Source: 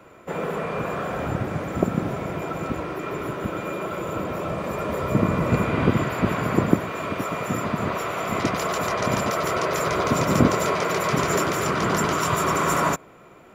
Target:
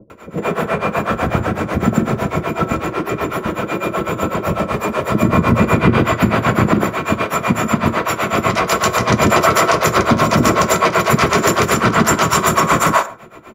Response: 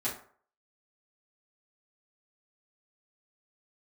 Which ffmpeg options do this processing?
-filter_complex "[0:a]asettb=1/sr,asplit=3[a][b][c];[a]atrim=end=4.824[d];[b]atrim=start=4.82:end=5.23,asetpts=PTS-STARTPTS,afade=t=in:d=0.004:c=qsin,afade=t=out:st=0.406:d=0.004:c=qsin,lowshelf=f=180:g=-9.5[e];[c]atrim=start=5.226[f];[d][e]acrossfade=d=0.004:c1=hsin:c2=qsin[g];[g][f]acrossfade=d=0.004:c1=qsin:c2=hsin,asettb=1/sr,asplit=3[h][i][j];[h]atrim=end=9.204[k];[i]atrim=start=9.2:end=9.61,asetpts=PTS-STARTPTS,afade=t=in:d=0.004:c=qsin,afade=t=out:st=0.406:d=0.004:c=qsin,acontrast=31[l];[j]atrim=start=9.606[m];[k][l]acrossfade=d=0.004:c1=hsin:c2=qsin[n];[n][m]acrossfade=d=0.004:c1=qsin:c2=hsin,tremolo=f=8:d=0.96,acrossover=split=460[o][p];[p]adelay=100[q];[o][q]amix=inputs=2:normalize=0,asplit=2[r][s];[1:a]atrim=start_sample=2205,afade=t=out:st=0.2:d=0.01,atrim=end_sample=9261,asetrate=39690,aresample=44100[t];[s][t]afir=irnorm=-1:irlink=0,volume=-15dB[u];[r][u]amix=inputs=2:normalize=0,alimiter=level_in=14dB:limit=-1dB:release=50:level=0:latency=1,volume=-1dB"

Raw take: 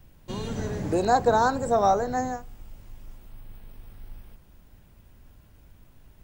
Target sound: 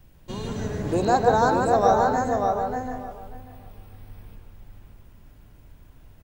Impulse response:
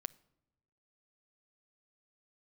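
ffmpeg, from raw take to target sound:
-filter_complex "[0:a]asplit=2[a][b];[b]adelay=589,lowpass=f=2.7k:p=1,volume=-3.5dB,asplit=2[c][d];[d]adelay=589,lowpass=f=2.7k:p=1,volume=0.16,asplit=2[e][f];[f]adelay=589,lowpass=f=2.7k:p=1,volume=0.16[g];[a][c][e][g]amix=inputs=4:normalize=0,asplit=2[h][i];[1:a]atrim=start_sample=2205,lowpass=3.3k,adelay=149[j];[i][j]afir=irnorm=-1:irlink=0,volume=-1dB[k];[h][k]amix=inputs=2:normalize=0"

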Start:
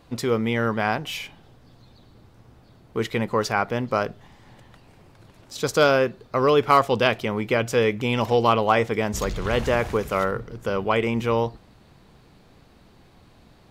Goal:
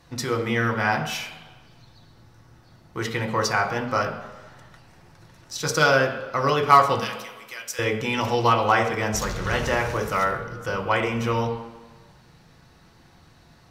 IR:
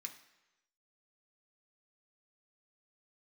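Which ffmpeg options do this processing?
-filter_complex "[0:a]asettb=1/sr,asplit=3[a][b][c];[a]atrim=end=7.004[d];[b]atrim=start=7:end=7.79,asetpts=PTS-STARTPTS,afade=t=in:d=0.004:c=qsin,afade=t=out:st=0.786:d=0.004:c=qsin,aderivative[e];[c]atrim=start=7.786[f];[d][e]acrossfade=d=0.004:c1=hsin:c2=qsin[g];[g][f]acrossfade=d=0.004:c1=qsin:c2=hsin[h];[1:a]atrim=start_sample=2205,asetrate=33075,aresample=44100[i];[h][i]afir=irnorm=-1:irlink=0,volume=4dB"

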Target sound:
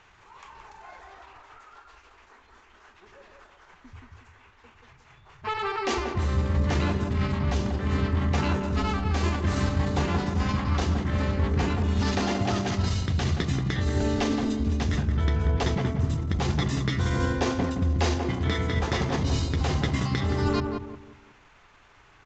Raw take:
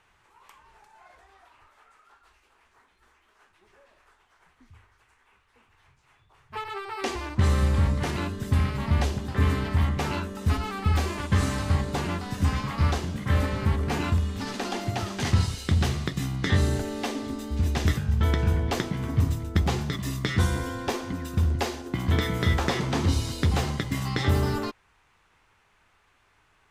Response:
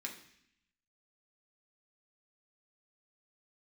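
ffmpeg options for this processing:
-filter_complex "[0:a]areverse,acompressor=threshold=-31dB:ratio=8,areverse,asplit=2[a][b];[b]adelay=214,lowpass=f=1.2k:p=1,volume=-3.5dB,asplit=2[c][d];[d]adelay=214,lowpass=f=1.2k:p=1,volume=0.37,asplit=2[e][f];[f]adelay=214,lowpass=f=1.2k:p=1,volume=0.37,asplit=2[g][h];[h]adelay=214,lowpass=f=1.2k:p=1,volume=0.37,asplit=2[i][j];[j]adelay=214,lowpass=f=1.2k:p=1,volume=0.37[k];[a][c][e][g][i][k]amix=inputs=6:normalize=0,atempo=1.2,aresample=16000,aresample=44100,volume=7.5dB"

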